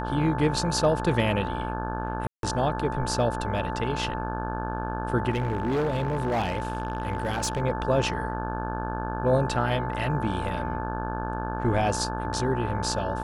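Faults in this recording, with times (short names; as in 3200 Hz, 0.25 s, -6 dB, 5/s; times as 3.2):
buzz 60 Hz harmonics 29 -32 dBFS
tone 880 Hz -33 dBFS
2.27–2.43 gap 0.162 s
5.3–7.62 clipped -22 dBFS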